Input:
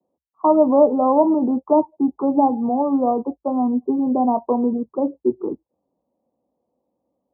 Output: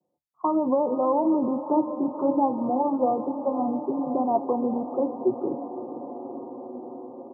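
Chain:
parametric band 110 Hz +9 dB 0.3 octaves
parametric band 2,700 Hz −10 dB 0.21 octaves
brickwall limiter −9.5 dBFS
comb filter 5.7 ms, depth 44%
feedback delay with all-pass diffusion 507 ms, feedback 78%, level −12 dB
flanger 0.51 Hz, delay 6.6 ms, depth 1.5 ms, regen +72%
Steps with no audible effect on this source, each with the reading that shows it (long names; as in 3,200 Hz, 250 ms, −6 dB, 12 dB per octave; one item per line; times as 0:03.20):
parametric band 2,700 Hz: nothing at its input above 1,200 Hz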